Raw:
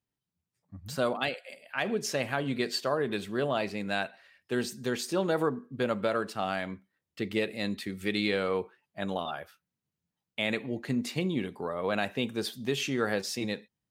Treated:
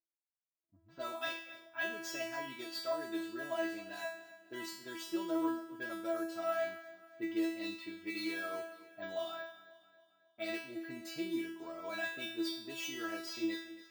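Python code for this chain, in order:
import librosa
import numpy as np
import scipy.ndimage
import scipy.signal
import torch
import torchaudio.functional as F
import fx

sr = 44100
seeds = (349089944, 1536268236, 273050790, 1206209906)

p1 = fx.cvsd(x, sr, bps=64000)
p2 = scipy.signal.sosfilt(scipy.signal.butter(2, 56.0, 'highpass', fs=sr, output='sos'), p1)
p3 = fx.env_lowpass(p2, sr, base_hz=550.0, full_db=-26.5)
p4 = fx.rider(p3, sr, range_db=10, speed_s=0.5)
p5 = p3 + (p4 * librosa.db_to_amplitude(-1.0))
p6 = fx.comb_fb(p5, sr, f0_hz=330.0, decay_s=0.59, harmonics='all', damping=0.0, mix_pct=100)
p7 = p6 + fx.echo_feedback(p6, sr, ms=271, feedback_pct=49, wet_db=-17.0, dry=0)
p8 = np.repeat(p7[::2], 2)[:len(p7)]
y = p8 * librosa.db_to_amplitude(5.5)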